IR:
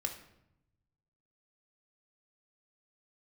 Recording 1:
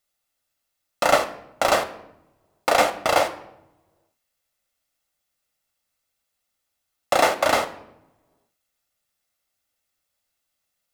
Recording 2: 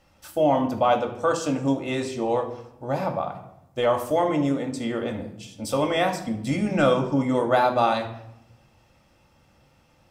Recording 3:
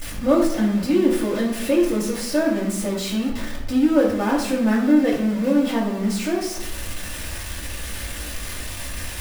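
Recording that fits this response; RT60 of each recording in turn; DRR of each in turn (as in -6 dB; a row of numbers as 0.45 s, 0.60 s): 2; 0.85 s, 0.80 s, 0.80 s; 8.0 dB, 3.0 dB, -5.5 dB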